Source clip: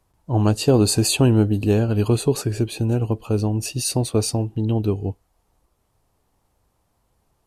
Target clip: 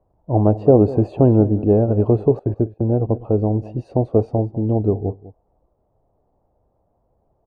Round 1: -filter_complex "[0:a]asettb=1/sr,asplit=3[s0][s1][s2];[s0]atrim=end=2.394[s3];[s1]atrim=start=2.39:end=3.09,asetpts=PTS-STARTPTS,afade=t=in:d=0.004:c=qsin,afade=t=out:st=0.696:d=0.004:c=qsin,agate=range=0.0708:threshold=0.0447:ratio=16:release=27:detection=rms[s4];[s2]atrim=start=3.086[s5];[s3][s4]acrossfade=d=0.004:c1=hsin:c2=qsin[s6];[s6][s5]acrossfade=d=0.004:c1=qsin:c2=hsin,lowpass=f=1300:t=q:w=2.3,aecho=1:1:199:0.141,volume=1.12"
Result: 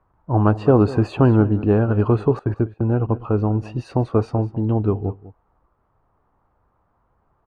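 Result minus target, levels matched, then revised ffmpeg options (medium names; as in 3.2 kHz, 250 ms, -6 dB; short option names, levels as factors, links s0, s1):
1 kHz band +3.5 dB
-filter_complex "[0:a]asettb=1/sr,asplit=3[s0][s1][s2];[s0]atrim=end=2.394[s3];[s1]atrim=start=2.39:end=3.09,asetpts=PTS-STARTPTS,afade=t=in:d=0.004:c=qsin,afade=t=out:st=0.696:d=0.004:c=qsin,agate=range=0.0708:threshold=0.0447:ratio=16:release=27:detection=rms[s4];[s2]atrim=start=3.086[s5];[s3][s4]acrossfade=d=0.004:c1=hsin:c2=qsin[s6];[s6][s5]acrossfade=d=0.004:c1=qsin:c2=hsin,lowpass=f=640:t=q:w=2.3,aecho=1:1:199:0.141,volume=1.12"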